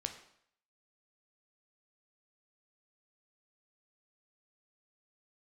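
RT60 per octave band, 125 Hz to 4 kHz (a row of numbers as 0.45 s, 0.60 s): 0.60 s, 0.60 s, 0.65 s, 0.65 s, 0.65 s, 0.60 s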